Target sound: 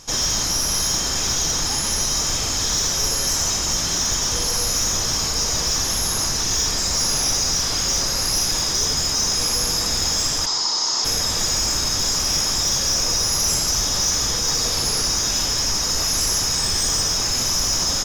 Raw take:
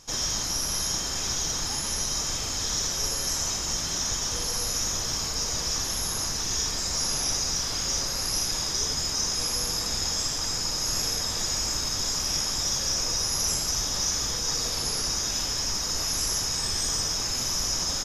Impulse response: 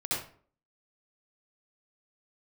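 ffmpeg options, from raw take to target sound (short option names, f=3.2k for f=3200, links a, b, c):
-filter_complex "[0:a]aeval=exprs='0.211*(cos(1*acos(clip(val(0)/0.211,-1,1)))-cos(1*PI/2))+0.0266*(cos(5*acos(clip(val(0)/0.211,-1,1)))-cos(5*PI/2))':c=same,asplit=3[a][b][c];[a]afade=t=out:st=10.45:d=0.02[d];[b]highpass=400,equalizer=f=540:t=q:w=4:g=-8,equalizer=f=970:t=q:w=4:g=7,equalizer=f=1.6k:t=q:w=4:g=-6,equalizer=f=2.5k:t=q:w=4:g=-8,equalizer=f=4.4k:t=q:w=4:g=5,lowpass=f=6.7k:w=0.5412,lowpass=f=6.7k:w=1.3066,afade=t=in:st=10.45:d=0.02,afade=t=out:st=11.04:d=0.02[e];[c]afade=t=in:st=11.04:d=0.02[f];[d][e][f]amix=inputs=3:normalize=0,asplit=2[g][h];[1:a]atrim=start_sample=2205,adelay=67[i];[h][i]afir=irnorm=-1:irlink=0,volume=-26dB[j];[g][j]amix=inputs=2:normalize=0,volume=4dB"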